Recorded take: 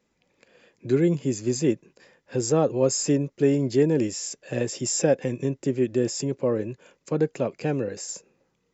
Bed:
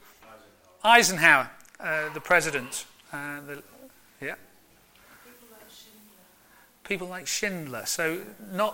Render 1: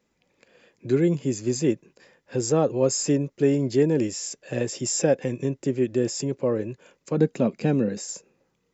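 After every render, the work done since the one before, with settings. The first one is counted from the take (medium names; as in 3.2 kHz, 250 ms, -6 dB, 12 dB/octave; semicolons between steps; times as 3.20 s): 7.17–8.03 s: small resonant body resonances 210/3800 Hz, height 13 dB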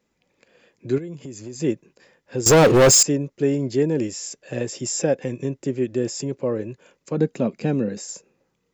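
0.98–1.60 s: compression 4:1, threshold -33 dBFS; 2.46–3.03 s: waveshaping leveller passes 5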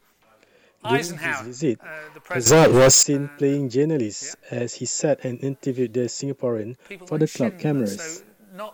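add bed -8.5 dB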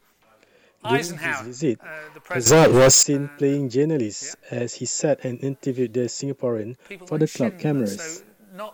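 no audible change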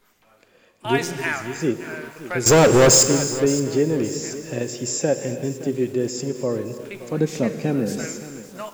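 gated-style reverb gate 390 ms flat, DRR 9 dB; bit-crushed delay 569 ms, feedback 35%, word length 6-bit, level -14.5 dB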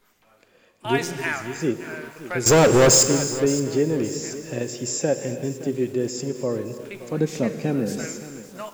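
trim -1.5 dB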